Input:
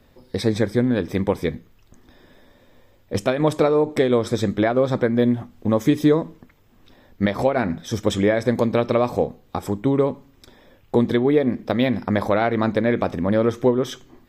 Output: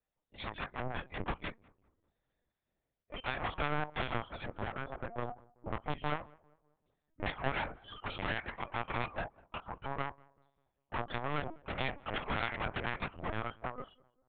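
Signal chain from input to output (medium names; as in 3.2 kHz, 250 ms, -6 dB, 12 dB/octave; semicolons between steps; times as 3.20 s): fade out at the end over 1.01 s; spectral noise reduction 29 dB; 4.50–5.91 s: peaking EQ 3 kHz -14 dB 2.8 oct; 8.47–9.27 s: high-pass 920 Hz -> 220 Hz 12 dB/octave; in parallel at -1.5 dB: compression 6:1, threshold -28 dBFS, peak gain reduction 15 dB; on the sum: saturation -19 dBFS, distortion -9 dB; spectral gate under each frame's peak -10 dB weak; Chebyshev shaper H 7 -25 dB, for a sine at -17 dBFS; filtered feedback delay 196 ms, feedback 46%, low-pass 1.2 kHz, level -23 dB; LPC vocoder at 8 kHz pitch kept; trim -2.5 dB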